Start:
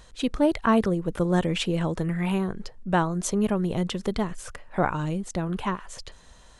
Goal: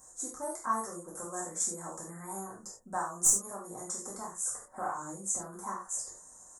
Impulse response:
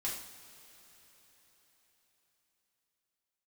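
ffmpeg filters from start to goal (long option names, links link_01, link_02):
-filter_complex "[0:a]highpass=frequency=360:poles=1,highshelf=frequency=5500:width_type=q:width=3:gain=9,acrossover=split=780[link_01][link_02];[link_01]acompressor=threshold=-40dB:ratio=10[link_03];[link_02]aeval=exprs='clip(val(0),-1,0.266)':channel_layout=same[link_04];[link_03][link_04]amix=inputs=2:normalize=0,asuperstop=centerf=2800:order=4:qfactor=0.57,asplit=2[link_05][link_06];[link_06]adelay=26,volume=-7.5dB[link_07];[link_05][link_07]amix=inputs=2:normalize=0[link_08];[1:a]atrim=start_sample=2205,atrim=end_sample=4410[link_09];[link_08][link_09]afir=irnorm=-1:irlink=0,volume=-4.5dB"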